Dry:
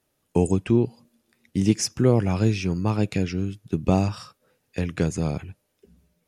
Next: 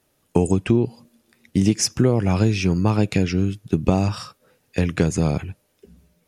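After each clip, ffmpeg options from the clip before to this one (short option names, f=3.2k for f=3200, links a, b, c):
-af "acompressor=threshold=-19dB:ratio=6,volume=6.5dB"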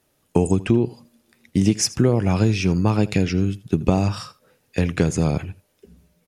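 -af "aecho=1:1:81:0.106"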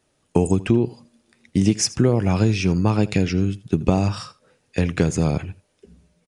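-af "aresample=22050,aresample=44100"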